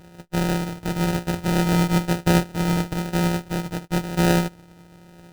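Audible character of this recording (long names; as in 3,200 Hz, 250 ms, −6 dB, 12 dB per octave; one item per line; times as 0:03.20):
a buzz of ramps at a fixed pitch in blocks of 256 samples
phaser sweep stages 4, 1 Hz, lowest notch 760–1,800 Hz
aliases and images of a low sample rate 1,100 Hz, jitter 0%
Ogg Vorbis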